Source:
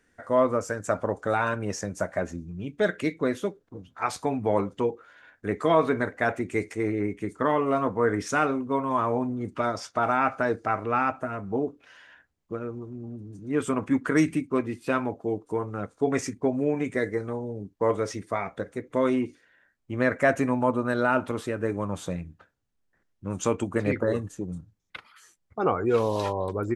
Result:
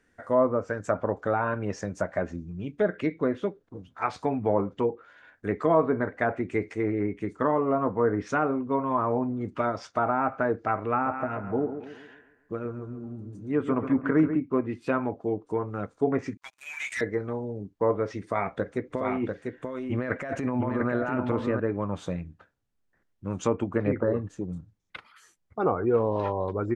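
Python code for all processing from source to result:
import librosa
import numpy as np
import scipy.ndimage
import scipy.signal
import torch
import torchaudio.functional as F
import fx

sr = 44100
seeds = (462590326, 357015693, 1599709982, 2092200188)

y = fx.chain(x, sr, fx.notch(hz=5300.0, q=18.0),
    fx.echo_bbd(ms=137, stages=2048, feedback_pct=44, wet_db=-9.5), at=(10.92, 14.37))
y = fx.chain(y, sr, fx.bessel_highpass(hz=2600.0, order=6),
    fx.leveller(passes=5), at=(16.37, 17.01))
y = fx.chain(y, sr, fx.over_compress(threshold_db=-28.0, ratio=-1.0),
    fx.echo_single(ms=694, db=-4.0), at=(18.23, 21.6))
y = fx.high_shelf(y, sr, hz=4100.0, db=-5.0)
y = fx.env_lowpass_down(y, sr, base_hz=1200.0, full_db=-20.0)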